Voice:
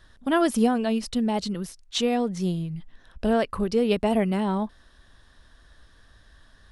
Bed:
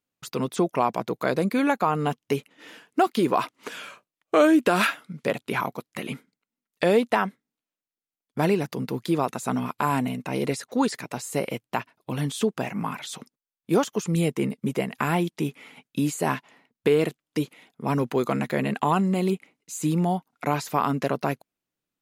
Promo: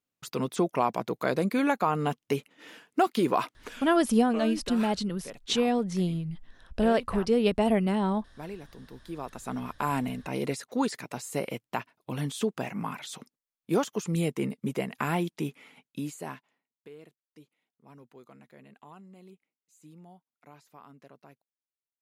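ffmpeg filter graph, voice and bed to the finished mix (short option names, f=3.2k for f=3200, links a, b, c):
-filter_complex "[0:a]adelay=3550,volume=-1.5dB[a];[1:a]volume=10.5dB,afade=t=out:st=3.36:d=0.85:silence=0.177828,afade=t=in:st=9.03:d=0.89:silence=0.211349,afade=t=out:st=15.36:d=1.29:silence=0.0668344[b];[a][b]amix=inputs=2:normalize=0"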